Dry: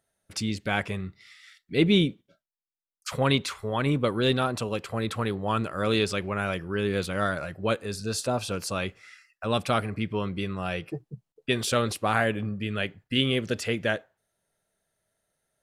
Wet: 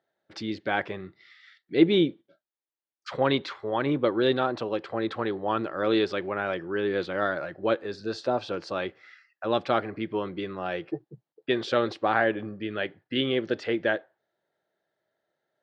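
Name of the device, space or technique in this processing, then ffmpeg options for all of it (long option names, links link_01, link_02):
kitchen radio: -af "highpass=170,equalizer=frequency=200:width_type=q:width=4:gain=-4,equalizer=frequency=340:width_type=q:width=4:gain=9,equalizer=frequency=560:width_type=q:width=4:gain=4,equalizer=frequency=810:width_type=q:width=4:gain=5,equalizer=frequency=1700:width_type=q:width=4:gain=4,equalizer=frequency=2600:width_type=q:width=4:gain=-5,lowpass=frequency=4400:width=0.5412,lowpass=frequency=4400:width=1.3066,volume=-2dB"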